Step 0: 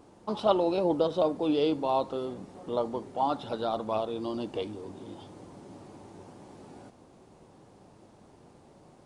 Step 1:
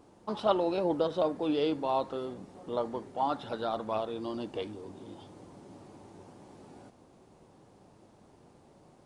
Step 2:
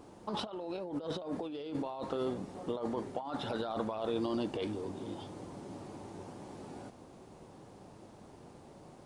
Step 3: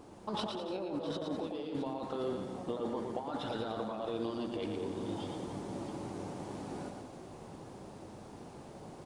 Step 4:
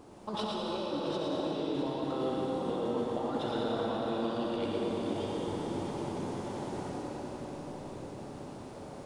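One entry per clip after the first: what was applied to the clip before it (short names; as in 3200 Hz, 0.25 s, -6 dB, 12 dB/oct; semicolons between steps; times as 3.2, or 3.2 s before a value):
dynamic EQ 1700 Hz, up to +7 dB, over -51 dBFS, Q 1.9; gain -3 dB
negative-ratio compressor -37 dBFS, ratio -1
vocal rider within 4 dB 0.5 s; tapped delay 0.114/0.201/0.29/0.325/0.664 s -5/-11/-14/-18.5/-13.5 dB; gain -1 dB
reverb RT60 5.8 s, pre-delay 25 ms, DRR -2.5 dB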